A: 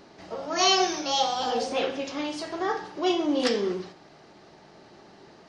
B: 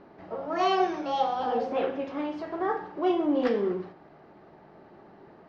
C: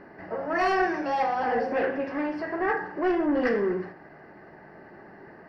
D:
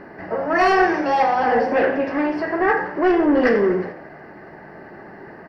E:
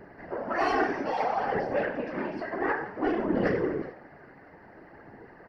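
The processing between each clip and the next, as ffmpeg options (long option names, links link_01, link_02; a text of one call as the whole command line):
ffmpeg -i in.wav -af "lowpass=1600,bandreject=frequency=60:width_type=h:width=6,bandreject=frequency=120:width_type=h:width=6" out.wav
ffmpeg -i in.wav -af "asoftclip=type=tanh:threshold=-22.5dB,superequalizer=11b=2.82:13b=0.316:15b=0.316,volume=3.5dB" out.wav
ffmpeg -i in.wav -filter_complex "[0:a]asplit=6[link_01][link_02][link_03][link_04][link_05][link_06];[link_02]adelay=88,afreqshift=70,volume=-17dB[link_07];[link_03]adelay=176,afreqshift=140,volume=-22.5dB[link_08];[link_04]adelay=264,afreqshift=210,volume=-28dB[link_09];[link_05]adelay=352,afreqshift=280,volume=-33.5dB[link_10];[link_06]adelay=440,afreqshift=350,volume=-39.1dB[link_11];[link_01][link_07][link_08][link_09][link_10][link_11]amix=inputs=6:normalize=0,volume=8dB" out.wav
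ffmpeg -i in.wav -af "afftfilt=real='hypot(re,im)*cos(2*PI*random(0))':imag='hypot(re,im)*sin(2*PI*random(1))':win_size=512:overlap=0.75,flanger=delay=0.1:depth=7.5:regen=74:speed=0.58:shape=sinusoidal" out.wav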